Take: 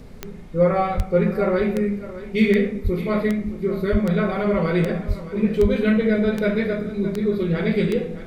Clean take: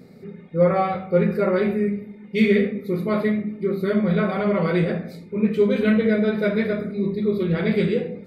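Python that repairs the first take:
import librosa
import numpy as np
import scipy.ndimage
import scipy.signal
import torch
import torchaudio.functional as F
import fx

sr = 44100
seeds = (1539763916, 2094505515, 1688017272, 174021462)

y = fx.fix_declick_ar(x, sr, threshold=10.0)
y = fx.fix_deplosive(y, sr, at_s=(0.96, 2.83, 3.91, 5.07, 5.61))
y = fx.noise_reduce(y, sr, print_start_s=0.0, print_end_s=0.5, reduce_db=6.0)
y = fx.fix_echo_inverse(y, sr, delay_ms=616, level_db=-14.5)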